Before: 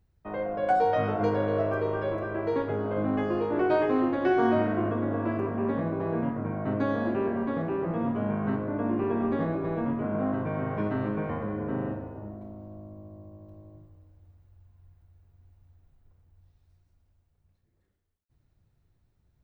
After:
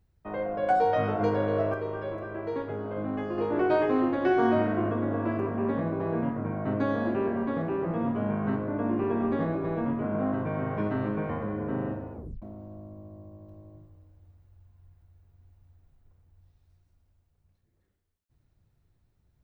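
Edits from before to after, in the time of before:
0:01.74–0:03.38: clip gain −4.5 dB
0:12.13: tape stop 0.29 s

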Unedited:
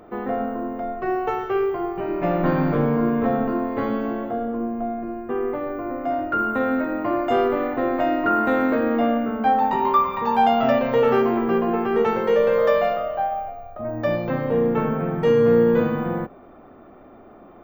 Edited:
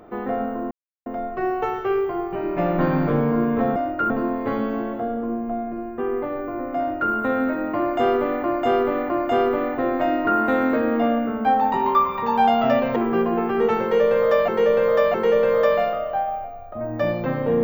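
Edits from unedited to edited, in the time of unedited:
0:00.71: splice in silence 0.35 s
0:06.09–0:06.43: duplicate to 0:03.41
0:07.09–0:07.75: repeat, 3 plays
0:10.95–0:11.32: remove
0:12.18–0:12.84: repeat, 3 plays

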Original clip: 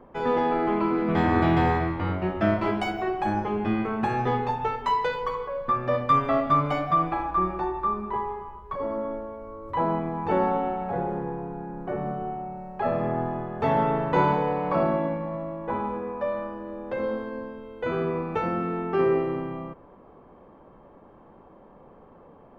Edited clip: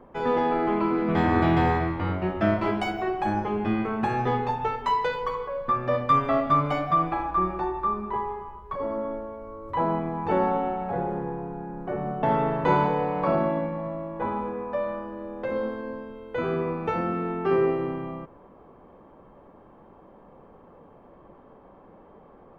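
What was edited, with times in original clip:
0:12.23–0:13.71: remove

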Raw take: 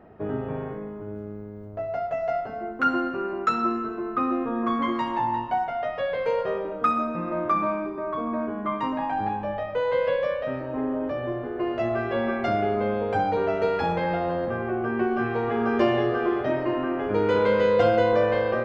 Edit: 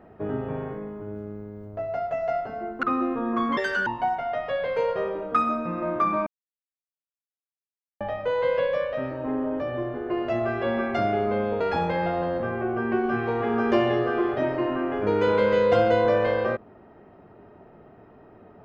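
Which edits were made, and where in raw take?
0:02.83–0:04.13: remove
0:04.87–0:05.36: play speed 166%
0:07.76–0:09.50: silence
0:13.10–0:13.68: remove

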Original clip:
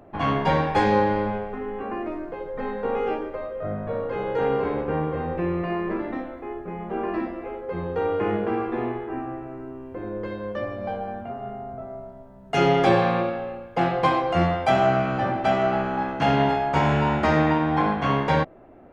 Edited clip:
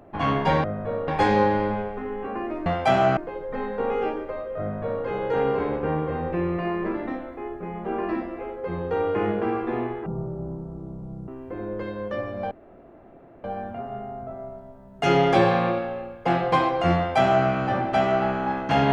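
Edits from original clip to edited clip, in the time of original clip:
0:03.66–0:04.10: duplicate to 0:00.64
0:09.11–0:09.72: play speed 50%
0:10.95: splice in room tone 0.93 s
0:14.47–0:14.98: duplicate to 0:02.22

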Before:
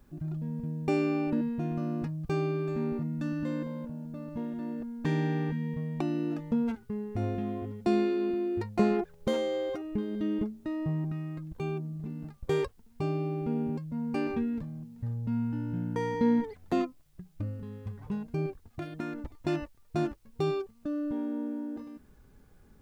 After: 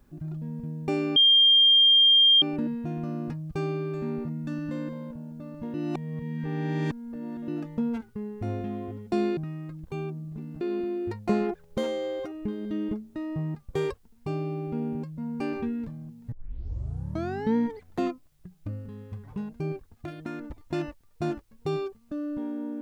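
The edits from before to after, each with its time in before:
0:01.16: insert tone 3,200 Hz −14.5 dBFS 1.26 s
0:04.48–0:06.22: reverse
0:11.05–0:12.29: move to 0:08.11
0:15.06: tape start 1.24 s

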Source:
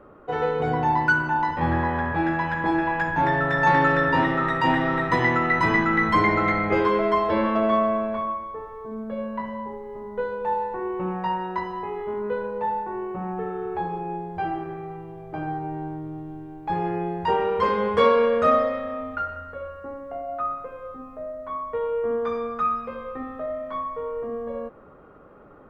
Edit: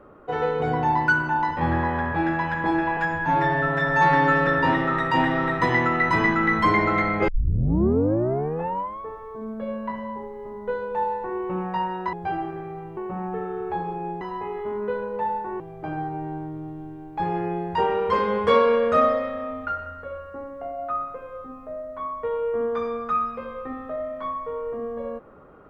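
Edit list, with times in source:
0:02.97–0:03.97: time-stretch 1.5×
0:06.78: tape start 1.73 s
0:11.63–0:13.02: swap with 0:14.26–0:15.10

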